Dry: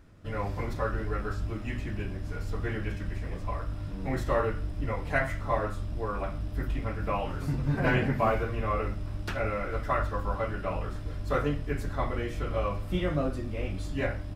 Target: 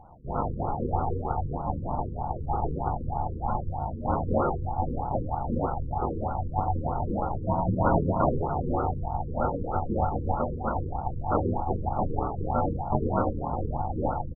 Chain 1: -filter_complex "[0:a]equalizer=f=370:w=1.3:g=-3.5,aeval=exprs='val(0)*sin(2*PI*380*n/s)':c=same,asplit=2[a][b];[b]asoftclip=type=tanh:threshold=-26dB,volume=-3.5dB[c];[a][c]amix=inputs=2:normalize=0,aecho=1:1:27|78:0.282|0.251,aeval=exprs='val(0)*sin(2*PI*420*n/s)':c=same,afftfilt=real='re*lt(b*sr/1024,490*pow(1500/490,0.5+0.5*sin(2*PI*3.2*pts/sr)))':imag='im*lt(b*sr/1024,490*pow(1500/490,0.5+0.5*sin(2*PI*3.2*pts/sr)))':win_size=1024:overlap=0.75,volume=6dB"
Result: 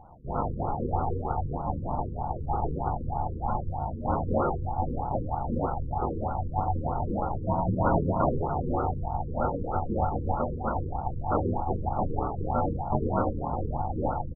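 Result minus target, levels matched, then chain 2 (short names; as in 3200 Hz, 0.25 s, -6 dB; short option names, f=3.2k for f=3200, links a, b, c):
soft clip: distortion +15 dB
-filter_complex "[0:a]equalizer=f=370:w=1.3:g=-3.5,aeval=exprs='val(0)*sin(2*PI*380*n/s)':c=same,asplit=2[a][b];[b]asoftclip=type=tanh:threshold=-15.5dB,volume=-3.5dB[c];[a][c]amix=inputs=2:normalize=0,aecho=1:1:27|78:0.282|0.251,aeval=exprs='val(0)*sin(2*PI*420*n/s)':c=same,afftfilt=real='re*lt(b*sr/1024,490*pow(1500/490,0.5+0.5*sin(2*PI*3.2*pts/sr)))':imag='im*lt(b*sr/1024,490*pow(1500/490,0.5+0.5*sin(2*PI*3.2*pts/sr)))':win_size=1024:overlap=0.75,volume=6dB"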